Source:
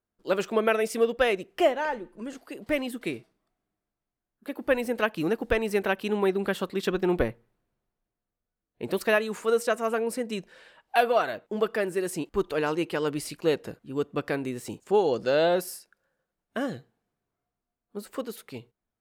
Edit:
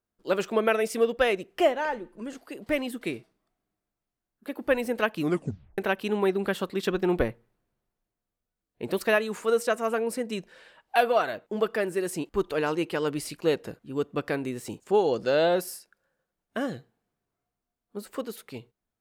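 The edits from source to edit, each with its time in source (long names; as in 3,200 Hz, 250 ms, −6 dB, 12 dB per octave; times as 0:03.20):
0:05.22: tape stop 0.56 s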